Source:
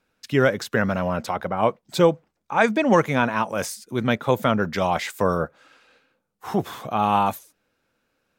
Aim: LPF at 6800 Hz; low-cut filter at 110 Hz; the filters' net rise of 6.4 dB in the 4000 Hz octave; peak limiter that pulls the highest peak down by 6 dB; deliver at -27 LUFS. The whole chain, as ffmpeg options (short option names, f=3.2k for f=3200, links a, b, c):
-af "highpass=110,lowpass=6.8k,equalizer=f=4k:t=o:g=8.5,volume=-3.5dB,alimiter=limit=-12.5dB:level=0:latency=1"